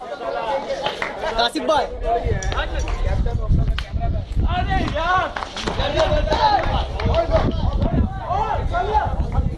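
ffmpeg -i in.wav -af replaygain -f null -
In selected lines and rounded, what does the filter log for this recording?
track_gain = +1.3 dB
track_peak = 0.447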